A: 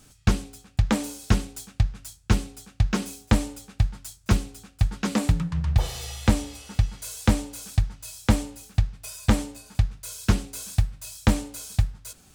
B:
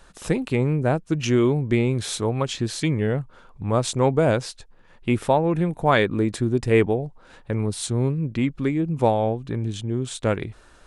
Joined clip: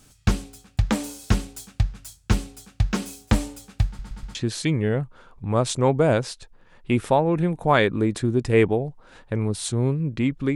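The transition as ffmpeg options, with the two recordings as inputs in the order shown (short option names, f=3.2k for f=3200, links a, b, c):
-filter_complex "[0:a]apad=whole_dur=10.55,atrim=end=10.55,asplit=4[a][b][c][d];[a]atrim=end=3.992[e];[b]atrim=start=3.868:end=3.992[f];[c]atrim=start=3.868:end=3.992[g];[d]atrim=start=3.868:end=3.992[h];[1:a]atrim=start=2.528:end=8.73[i];[e][f]acrossfade=d=0.004:c1=hsin:c2=hsin[j];[j][g]acrossfade=d=0.004:c1=hsin:c2=hsin[k];[k][h]acrossfade=d=0.004:c1=hsin:c2=hsin[l];[l][i]acrossfade=d=0.004:c1=hsin:c2=hsin"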